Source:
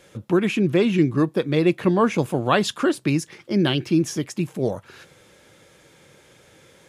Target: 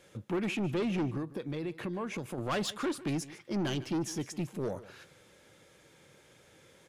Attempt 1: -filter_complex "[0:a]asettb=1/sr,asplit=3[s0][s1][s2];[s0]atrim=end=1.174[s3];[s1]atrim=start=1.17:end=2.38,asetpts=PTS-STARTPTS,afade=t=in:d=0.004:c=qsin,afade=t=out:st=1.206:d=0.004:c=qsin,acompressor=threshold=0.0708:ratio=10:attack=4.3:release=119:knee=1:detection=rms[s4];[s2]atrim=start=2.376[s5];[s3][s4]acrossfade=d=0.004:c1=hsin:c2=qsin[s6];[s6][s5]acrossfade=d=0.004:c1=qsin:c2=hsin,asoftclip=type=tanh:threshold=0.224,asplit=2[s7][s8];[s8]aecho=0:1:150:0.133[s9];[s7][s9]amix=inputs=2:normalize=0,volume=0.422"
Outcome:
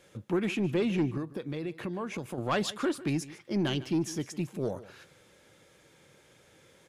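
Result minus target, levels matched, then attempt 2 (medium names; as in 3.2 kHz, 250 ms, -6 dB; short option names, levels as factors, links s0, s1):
saturation: distortion -7 dB
-filter_complex "[0:a]asettb=1/sr,asplit=3[s0][s1][s2];[s0]atrim=end=1.174[s3];[s1]atrim=start=1.17:end=2.38,asetpts=PTS-STARTPTS,afade=t=in:d=0.004:c=qsin,afade=t=out:st=1.206:d=0.004:c=qsin,acompressor=threshold=0.0708:ratio=10:attack=4.3:release=119:knee=1:detection=rms[s4];[s2]atrim=start=2.376[s5];[s3][s4]acrossfade=d=0.004:c1=hsin:c2=qsin[s6];[s6][s5]acrossfade=d=0.004:c1=qsin:c2=hsin,asoftclip=type=tanh:threshold=0.1,asplit=2[s7][s8];[s8]aecho=0:1:150:0.133[s9];[s7][s9]amix=inputs=2:normalize=0,volume=0.422"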